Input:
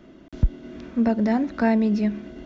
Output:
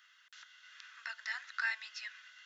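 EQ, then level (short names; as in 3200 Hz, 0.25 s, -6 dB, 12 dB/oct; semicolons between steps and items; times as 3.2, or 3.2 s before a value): steep high-pass 1400 Hz 36 dB/oct; notch 2300 Hz, Q 7.5; 0.0 dB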